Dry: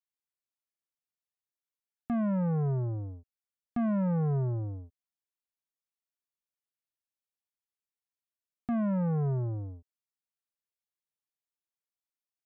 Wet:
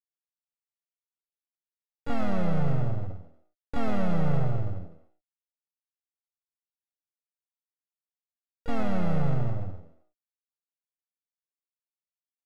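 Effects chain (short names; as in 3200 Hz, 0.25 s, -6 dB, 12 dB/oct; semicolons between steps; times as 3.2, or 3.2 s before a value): median filter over 25 samples; on a send: frequency-shifting echo 0.103 s, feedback 34%, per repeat +73 Hz, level -13 dB; on the sum: downsampling 22050 Hz; half-wave rectifier; harmoniser +3 st -3 dB, +12 st -13 dB; bell 220 Hz -2.5 dB 0.38 oct; comb 1.5 ms, depth 53%; gain +4 dB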